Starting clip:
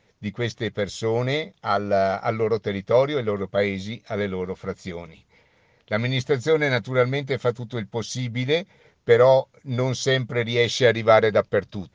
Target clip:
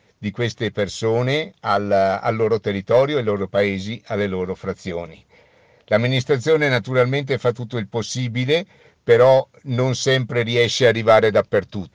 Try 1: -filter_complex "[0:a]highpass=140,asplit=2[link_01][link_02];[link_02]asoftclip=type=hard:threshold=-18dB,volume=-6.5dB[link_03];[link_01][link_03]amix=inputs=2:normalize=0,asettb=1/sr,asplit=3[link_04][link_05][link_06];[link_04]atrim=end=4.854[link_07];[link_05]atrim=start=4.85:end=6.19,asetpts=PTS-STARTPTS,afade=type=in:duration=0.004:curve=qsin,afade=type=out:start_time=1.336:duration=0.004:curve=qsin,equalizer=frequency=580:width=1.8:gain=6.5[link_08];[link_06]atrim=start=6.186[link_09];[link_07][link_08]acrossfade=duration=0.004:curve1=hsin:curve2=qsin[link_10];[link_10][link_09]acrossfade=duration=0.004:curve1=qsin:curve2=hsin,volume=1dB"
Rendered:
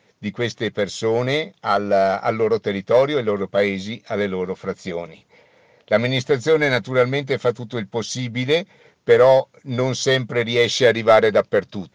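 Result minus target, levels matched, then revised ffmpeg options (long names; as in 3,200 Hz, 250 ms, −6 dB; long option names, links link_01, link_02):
125 Hz band −4.0 dB
-filter_complex "[0:a]highpass=45,asplit=2[link_01][link_02];[link_02]asoftclip=type=hard:threshold=-18dB,volume=-6.5dB[link_03];[link_01][link_03]amix=inputs=2:normalize=0,asettb=1/sr,asplit=3[link_04][link_05][link_06];[link_04]atrim=end=4.854[link_07];[link_05]atrim=start=4.85:end=6.19,asetpts=PTS-STARTPTS,afade=type=in:duration=0.004:curve=qsin,afade=type=out:start_time=1.336:duration=0.004:curve=qsin,equalizer=frequency=580:width=1.8:gain=6.5[link_08];[link_06]atrim=start=6.186[link_09];[link_07][link_08]acrossfade=duration=0.004:curve1=hsin:curve2=qsin[link_10];[link_10][link_09]acrossfade=duration=0.004:curve1=qsin:curve2=hsin,volume=1dB"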